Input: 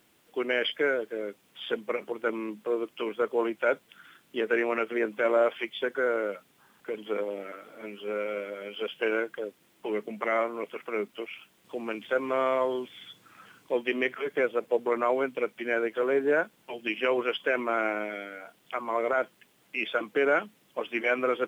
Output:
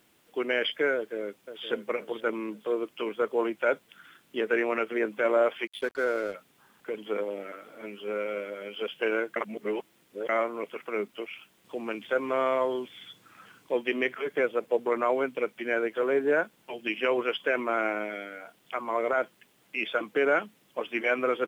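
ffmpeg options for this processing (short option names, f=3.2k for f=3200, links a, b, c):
-filter_complex "[0:a]asplit=2[a][b];[b]afade=t=in:st=0.95:d=0.01,afade=t=out:st=1.68:d=0.01,aecho=0:1:520|1040|1560|2080:0.281838|0.112735|0.0450941|0.0180377[c];[a][c]amix=inputs=2:normalize=0,asettb=1/sr,asplit=3[d][e][f];[d]atrim=end=5.674[g];[e]atrim=start=5.67:end=6.34,asetpts=PTS-STARTPTS,afade=t=in:d=0.004:c=qsin,afade=t=out:st=0.666:d=0.004:c=qsin,aeval=exprs='sgn(val(0))*max(abs(val(0))-0.00668,0)':c=same[h];[f]atrim=start=6.336[i];[g][h]acrossfade=d=0.004:c1=hsin:c2=qsin[j];[j][i]acrossfade=d=0.004:c1=qsin:c2=hsin,asplit=3[k][l][m];[k]atrim=end=9.362[n];[l]atrim=start=9.358:end=10.292,asetpts=PTS-STARTPTS,areverse[o];[m]atrim=start=10.288[p];[n][o]acrossfade=d=0.004:c1=hsin:c2=hsin[q];[q][p]acrossfade=d=0.004:c1=hsin:c2=hsin"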